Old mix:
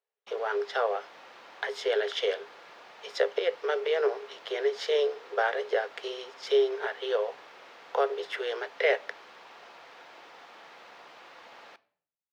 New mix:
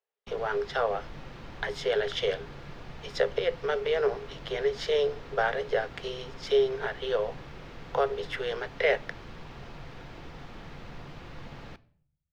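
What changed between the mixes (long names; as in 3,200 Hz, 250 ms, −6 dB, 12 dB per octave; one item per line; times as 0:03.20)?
background: remove Chebyshev high-pass filter 690 Hz, order 2
master: add parametric band 140 Hz +7.5 dB 0.28 octaves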